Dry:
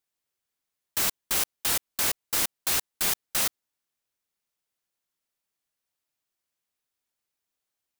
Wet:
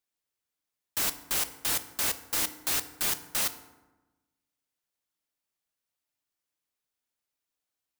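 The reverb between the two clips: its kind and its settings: FDN reverb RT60 1.1 s, low-frequency decay 1.25×, high-frequency decay 0.55×, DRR 10 dB; gain -3 dB

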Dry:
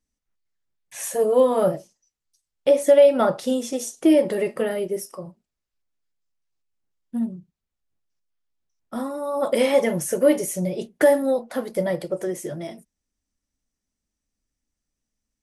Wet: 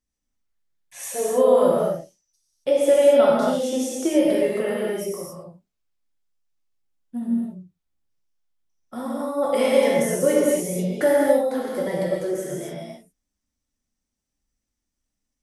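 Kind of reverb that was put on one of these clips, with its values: non-linear reverb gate 0.3 s flat, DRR -4.5 dB; gain -5 dB

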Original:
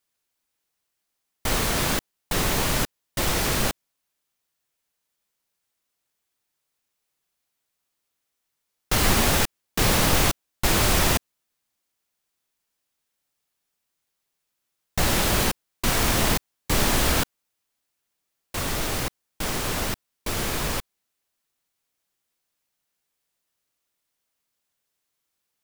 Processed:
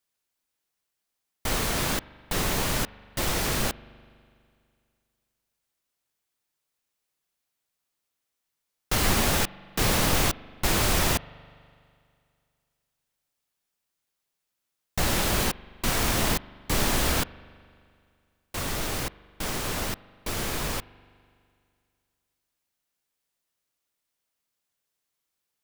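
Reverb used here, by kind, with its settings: spring tank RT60 2.3 s, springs 41 ms, chirp 70 ms, DRR 19.5 dB; gain -3 dB

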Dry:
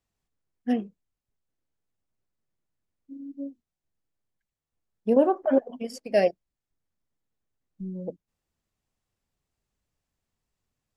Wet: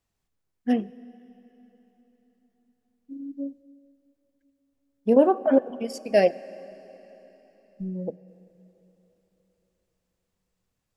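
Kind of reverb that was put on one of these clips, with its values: plate-style reverb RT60 3.9 s, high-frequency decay 0.95×, DRR 17.5 dB; gain +2.5 dB

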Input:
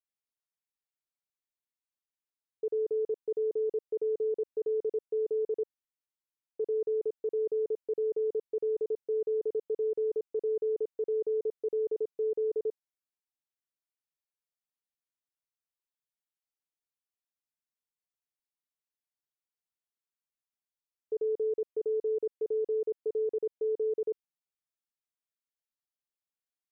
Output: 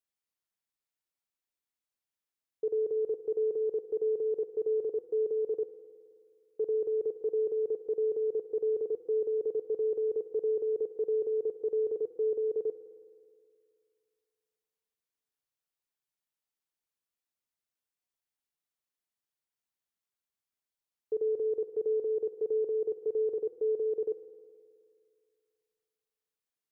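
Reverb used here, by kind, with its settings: spring tank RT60 2.3 s, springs 53 ms, chirp 45 ms, DRR 11 dB; gain +1 dB

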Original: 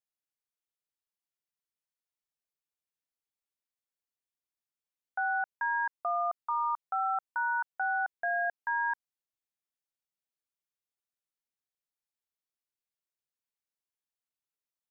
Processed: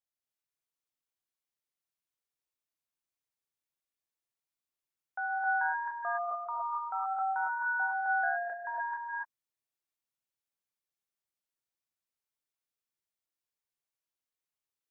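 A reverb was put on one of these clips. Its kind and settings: non-linear reverb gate 0.32 s rising, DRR -3 dB; gain -5 dB

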